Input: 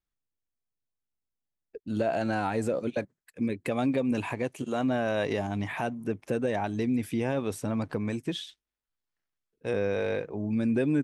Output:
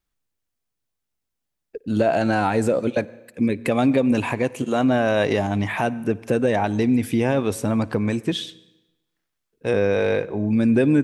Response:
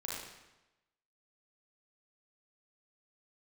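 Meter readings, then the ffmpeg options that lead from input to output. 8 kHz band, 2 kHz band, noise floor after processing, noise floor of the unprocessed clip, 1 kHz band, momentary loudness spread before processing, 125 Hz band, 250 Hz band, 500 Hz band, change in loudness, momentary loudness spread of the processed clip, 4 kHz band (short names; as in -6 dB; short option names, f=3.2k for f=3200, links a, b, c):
+8.5 dB, +8.5 dB, -80 dBFS, under -85 dBFS, +8.5 dB, 8 LU, +8.5 dB, +8.5 dB, +8.5 dB, +8.5 dB, 8 LU, +8.5 dB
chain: -filter_complex "[0:a]asplit=2[a][b];[1:a]atrim=start_sample=2205,adelay=57[c];[b][c]afir=irnorm=-1:irlink=0,volume=-21.5dB[d];[a][d]amix=inputs=2:normalize=0,volume=8.5dB"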